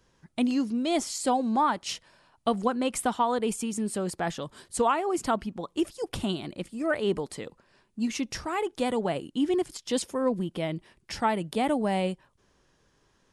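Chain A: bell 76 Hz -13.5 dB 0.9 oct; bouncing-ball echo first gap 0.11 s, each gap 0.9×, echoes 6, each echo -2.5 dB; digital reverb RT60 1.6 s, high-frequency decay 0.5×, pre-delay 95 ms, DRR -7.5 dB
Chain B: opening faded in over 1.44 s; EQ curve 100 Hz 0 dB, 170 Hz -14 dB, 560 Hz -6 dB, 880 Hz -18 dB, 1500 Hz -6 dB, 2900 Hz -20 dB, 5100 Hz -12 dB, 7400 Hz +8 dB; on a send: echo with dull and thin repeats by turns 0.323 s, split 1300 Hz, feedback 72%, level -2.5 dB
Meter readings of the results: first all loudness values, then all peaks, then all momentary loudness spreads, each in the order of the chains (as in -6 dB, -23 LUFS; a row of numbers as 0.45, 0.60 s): -17.5, -33.5 LUFS; -2.0, -10.5 dBFS; 7, 13 LU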